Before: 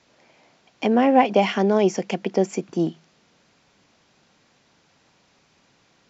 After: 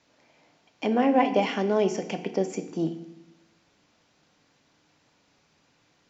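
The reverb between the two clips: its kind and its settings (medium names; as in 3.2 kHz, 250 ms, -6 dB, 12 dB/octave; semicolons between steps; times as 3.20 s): FDN reverb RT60 0.81 s, low-frequency decay 1.5×, high-frequency decay 0.95×, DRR 7.5 dB; trim -5.5 dB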